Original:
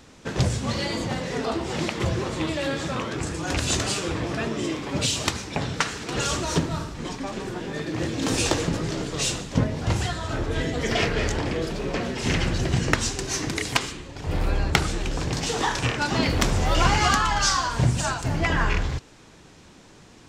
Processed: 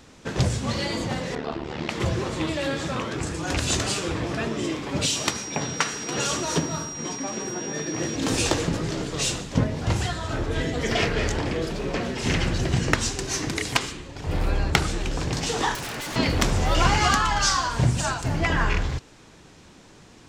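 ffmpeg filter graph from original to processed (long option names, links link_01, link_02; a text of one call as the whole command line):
ffmpeg -i in.wav -filter_complex "[0:a]asettb=1/sr,asplit=3[link_01][link_02][link_03];[link_01]atrim=end=1.354[link_04];[link_02]atrim=start=1.35:end=1.89,asetpts=PTS-STARTPTS,afade=type=in:duration=0.004:curve=qsin,afade=type=out:start_time=0.536:duration=0.004:curve=qsin,lowpass=3800,tremolo=f=74:d=0.857[link_05];[link_03]atrim=start=1.886[link_06];[link_04][link_05]acrossfade=duration=0.004:curve1=hsin:curve2=qsin[link_07];[link_07][link_06]acrossfade=duration=0.004:curve1=qsin:curve2=hsin,asettb=1/sr,asplit=3[link_08][link_09][link_10];[link_08]atrim=end=5.054[link_11];[link_09]atrim=start=5.05:end=8.16,asetpts=PTS-STARTPTS,afade=type=in:duration=0.004:curve=qsin,afade=type=out:start_time=3.106:duration=0.004:curve=qsin,highpass=140,aeval=exprs='val(0)+0.02*sin(2*PI*5700*n/s)':channel_layout=same,asplit=2[link_12][link_13];[link_13]adelay=14,volume=-13dB[link_14];[link_12][link_14]amix=inputs=2:normalize=0,atrim=end_sample=137151[link_15];[link_10]atrim=start=8.156[link_16];[link_11][link_15]acrossfade=duration=0.004:curve1=hsin:curve2=qsin[link_17];[link_17][link_16]acrossfade=duration=0.004:curve1=qsin:curve2=hsin,asettb=1/sr,asplit=3[link_18][link_19][link_20];[link_18]atrim=end=15.754[link_21];[link_19]atrim=start=15.75:end=16.16,asetpts=PTS-STARTPTS,afade=type=in:duration=0.004:curve=qsin,afade=type=out:start_time=0.406:duration=0.004:curve=qsin,highpass=88,aeval=exprs='0.0422*(abs(mod(val(0)/0.0422+3,4)-2)-1)':channel_layout=same[link_22];[link_20]atrim=start=16.156[link_23];[link_21][link_22]acrossfade=duration=0.004:curve1=hsin:curve2=qsin[link_24];[link_24][link_23]acrossfade=duration=0.004:curve1=qsin:curve2=hsin" out.wav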